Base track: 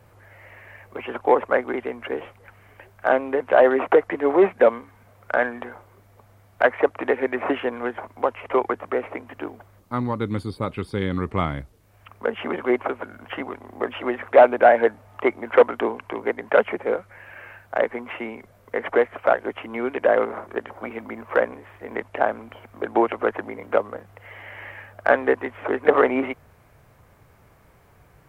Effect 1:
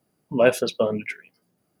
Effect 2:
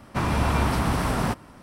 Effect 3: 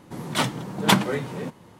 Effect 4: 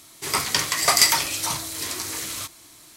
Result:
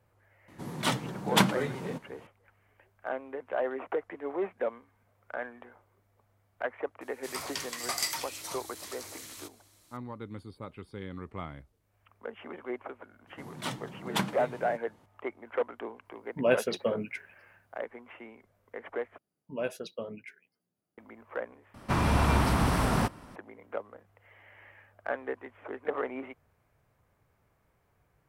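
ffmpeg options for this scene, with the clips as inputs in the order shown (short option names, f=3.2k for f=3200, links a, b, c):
-filter_complex "[3:a]asplit=2[a][b];[1:a]asplit=2[c][d];[0:a]volume=-16dB,asplit=3[e][f][g];[e]atrim=end=19.184[h];[d]atrim=end=1.8,asetpts=PTS-STARTPTS,volume=-16dB[i];[f]atrim=start=20.976:end=21.744[j];[2:a]atrim=end=1.62,asetpts=PTS-STARTPTS,volume=-2dB[k];[g]atrim=start=23.356[l];[a]atrim=end=1.79,asetpts=PTS-STARTPTS,volume=-5dB,afade=t=in:d=0.004:c=hsin,afade=t=out:st=1.786:d=0.004:c=hsin,adelay=480[m];[4:a]atrim=end=2.96,asetpts=PTS-STARTPTS,volume=-15dB,afade=t=in:d=0.004:c=hsin,afade=t=out:st=2.956:d=0.004:c=hsin,adelay=7010[n];[b]atrim=end=1.79,asetpts=PTS-STARTPTS,volume=-12dB,afade=t=in:d=0.004:c=hsin,afade=t=out:st=1.786:d=0.004:c=hsin,adelay=13270[o];[c]atrim=end=1.8,asetpts=PTS-STARTPTS,volume=-7.5dB,afade=t=in:d=0.004:c=hsin,afade=t=out:st=1.796:d=0.004:c=hsin,adelay=16050[p];[h][i]acrossfade=d=0.004:c1=hsin:c2=hsin[q];[q][j]acrossfade=d=0.004:c1=hsin:c2=hsin[r];[r][k]acrossfade=d=0.004:c1=hsin:c2=hsin[s];[s][l]acrossfade=d=0.004:c1=hsin:c2=hsin[t];[t][m][n][o][p]amix=inputs=5:normalize=0"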